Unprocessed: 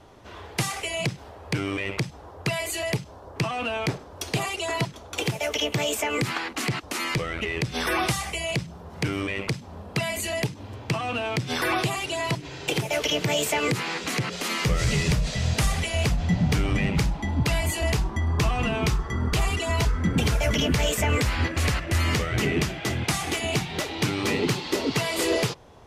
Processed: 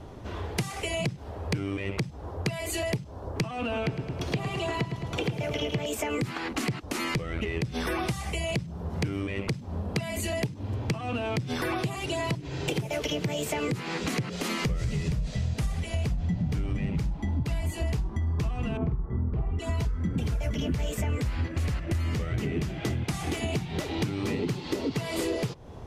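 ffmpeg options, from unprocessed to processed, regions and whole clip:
-filter_complex "[0:a]asettb=1/sr,asplit=3[a][b][c];[a]atrim=end=3.614[d];[b]atrim=start=3.61:end=5.86,asetpts=PTS-STARTPTS,afade=t=in:d=0.004:c=qsin,afade=t=out:st=2.246:d=0.004:c=qsin,acrossover=split=4500[e][f];[f]acompressor=threshold=-47dB:ratio=4:attack=1:release=60[g];[e][g]amix=inputs=2:normalize=0,aecho=1:1:108|216|324|432|540|648:0.473|0.232|0.114|0.0557|0.0273|0.0134,atrim=end_sample=99225[h];[c]atrim=start=5.856[i];[d][h]acrossfade=d=0.004:c1=hsin:c2=qsin[j];[j][i]acrossfade=d=0.004:c1=qsin:c2=hsin,asettb=1/sr,asplit=3[k][l][m];[k]atrim=end=18.774[n];[l]atrim=start=18.77:end=19.59,asetpts=PTS-STARTPTS,afade=t=in:d=0.004:c=qsin,afade=t=out:st=0.816:d=0.004:c=qsin,lowpass=1k,asplit=2[o][p];[p]adelay=48,volume=-6dB[q];[o][q]amix=inputs=2:normalize=0,atrim=end_sample=36162[r];[m]atrim=start=19.586[s];[n][r]acrossfade=d=0.004:c1=hsin:c2=qsin[t];[t][s]acrossfade=d=0.004:c1=qsin:c2=hsin,lowshelf=f=440:g=11.5,acompressor=threshold=-27dB:ratio=6"

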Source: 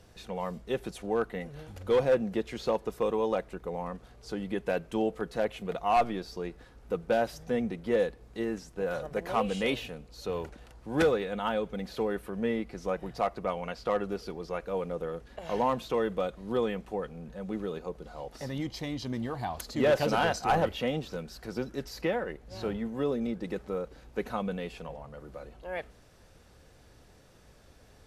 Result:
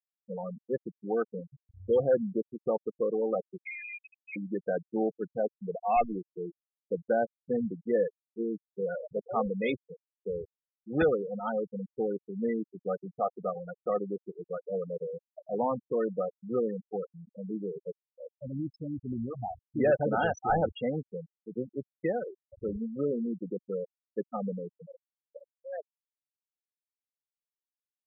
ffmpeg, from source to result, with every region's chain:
-filter_complex "[0:a]asettb=1/sr,asplit=3[a][b][c];[a]atrim=end=3.654[d];[b]atrim=start=3.65:end=4.36,asetpts=PTS-STARTPTS,afade=t=in:d=0.004:c=qsin,afade=t=out:st=0.706:d=0.004:c=qsin,lowshelf=f=290:g=7.5,asoftclip=type=hard:threshold=-34.5dB,lowpass=f=2.2k:t=q:w=0.5098,lowpass=f=2.2k:t=q:w=0.6013,lowpass=f=2.2k:t=q:w=0.9,lowpass=f=2.2k:t=q:w=2.563,afreqshift=-2600[e];[c]atrim=start=4.356[f];[d][e]acrossfade=d=0.004:c1=hsin:c2=qsin[g];[g][f]acrossfade=d=0.004:c1=qsin:c2=hsin,bandreject=f=1k:w=5.6,afftfilt=real='re*gte(hypot(re,im),0.0708)':imag='im*gte(hypot(re,im),0.0708)':win_size=1024:overlap=0.75"

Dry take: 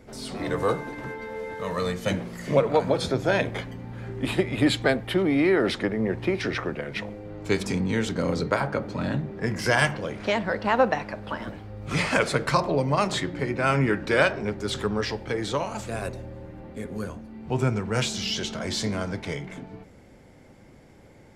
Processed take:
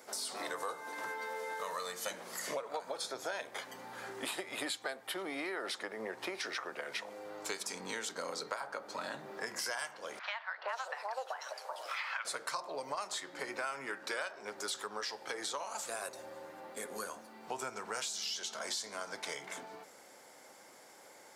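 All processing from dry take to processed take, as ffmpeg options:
-filter_complex "[0:a]asettb=1/sr,asplit=3[a][b][c];[a]atrim=end=10.194[d];[b]atrim=start=10.19:end=12.25,asetpts=PTS-STARTPTS,afade=t=in:d=0.004:c=qsin,afade=t=out:st=2.056:d=0.004:c=qsin,highpass=f=530:w=0.5412,highpass=f=530:w=1.3066,acrossover=split=870|3600[e][f][g];[e]adelay=380[h];[g]adelay=490[i];[h][f][i]amix=inputs=3:normalize=0,atrim=end_sample=90846[j];[c]atrim=start=12.246[k];[d][j]acrossfade=d=0.004:c1=hsin:c2=qsin[l];[l][k]acrossfade=d=0.004:c1=qsin:c2=hsin,highpass=1.2k,equalizer=f=2.4k:w=0.74:g=-13,acompressor=threshold=-49dB:ratio=6,volume=12dB"

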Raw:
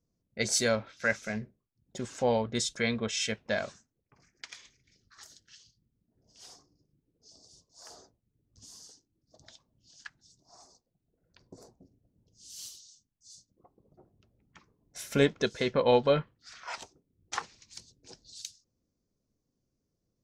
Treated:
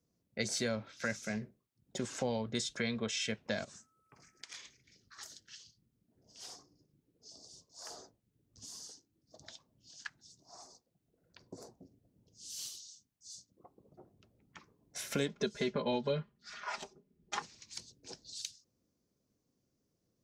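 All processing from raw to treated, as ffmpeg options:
-filter_complex "[0:a]asettb=1/sr,asplit=3[a][b][c];[a]atrim=end=3.644[d];[b]atrim=start=3.64:end=4.54,asetpts=PTS-STARTPTS,afade=t=in:d=0.004:c=qsin,afade=t=out:st=0.896:d=0.004:c=qsin,equalizer=f=9.1k:w=1.4:g=8.5,acompressor=threshold=-47dB:ratio=10:attack=3.2:release=140:knee=1:detection=peak,aeval=exprs='val(0)+0.000158*sin(2*PI*1300*n/s)':c=same[e];[c]atrim=start=4.536[f];[d][e]acrossfade=d=0.004:c1=hsin:c2=qsin[g];[g][f]acrossfade=d=0.004:c1=qsin:c2=hsin,asettb=1/sr,asplit=3[h][i][j];[h]atrim=end=15.284[k];[i]atrim=start=15.28:end=17.42,asetpts=PTS-STARTPTS,afade=t=in:d=0.004:c=qsin,afade=t=out:st=2.136:d=0.004:c=qsin,highshelf=f=4.3k:g=-11,aecho=1:1:4.9:0.97,atrim=end_sample=94374[l];[j]atrim=start=17.416[m];[k][l]acrossfade=d=0.004:c1=hsin:c2=qsin[n];[n][m]acrossfade=d=0.004:c1=qsin:c2=hsin,highpass=f=120:p=1,acrossover=split=290|4300[o][p][q];[o]acompressor=threshold=-40dB:ratio=4[r];[p]acompressor=threshold=-40dB:ratio=4[s];[q]acompressor=threshold=-45dB:ratio=4[t];[r][s][t]amix=inputs=3:normalize=0,volume=2.5dB"

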